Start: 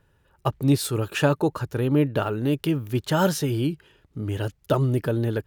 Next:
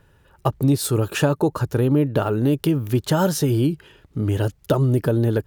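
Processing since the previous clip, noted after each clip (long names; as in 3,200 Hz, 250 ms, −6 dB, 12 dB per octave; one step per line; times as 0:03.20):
downward compressor 3 to 1, threshold −23 dBFS, peak gain reduction 7 dB
dynamic equaliser 2,400 Hz, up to −6 dB, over −46 dBFS, Q 0.75
level +7.5 dB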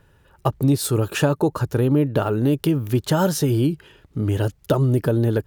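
no processing that can be heard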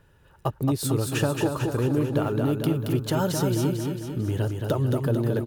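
in parallel at −2 dB: downward compressor, threshold −27 dBFS, peak gain reduction 13 dB
on the sum: repeating echo 223 ms, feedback 55%, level −4.5 dB
level −8 dB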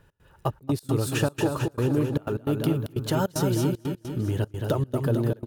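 gate pattern "x.xxxx.x.xxxx.xx" 152 BPM −24 dB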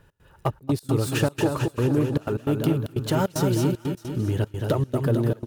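phase distortion by the signal itself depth 0.083 ms
delay with a high-pass on its return 615 ms, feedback 37%, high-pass 1,600 Hz, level −20.5 dB
level +2 dB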